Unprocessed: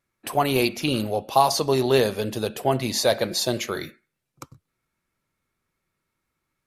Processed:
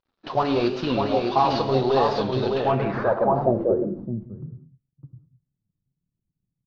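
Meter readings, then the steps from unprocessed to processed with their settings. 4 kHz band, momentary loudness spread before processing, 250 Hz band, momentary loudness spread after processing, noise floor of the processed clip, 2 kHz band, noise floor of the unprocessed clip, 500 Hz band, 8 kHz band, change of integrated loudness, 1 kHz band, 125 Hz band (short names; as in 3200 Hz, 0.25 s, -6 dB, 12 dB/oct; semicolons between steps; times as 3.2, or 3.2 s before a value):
-7.0 dB, 8 LU, +2.0 dB, 12 LU, -83 dBFS, -4.0 dB, -80 dBFS, +1.5 dB, under -20 dB, 0.0 dB, +2.0 dB, +2.0 dB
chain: CVSD 32 kbps; in parallel at -2 dB: limiter -17.5 dBFS, peak gain reduction 9 dB; on the sum: resonant high shelf 1600 Hz -7 dB, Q 1.5; flange 0.96 Hz, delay 1.9 ms, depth 9.1 ms, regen +44%; on a send: echo 0.609 s -4 dB; on the sum: non-linear reverb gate 0.23 s flat, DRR 9 dB; low-pass sweep 4000 Hz -> 160 Hz, 2.52–4.26; record warp 45 rpm, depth 100 cents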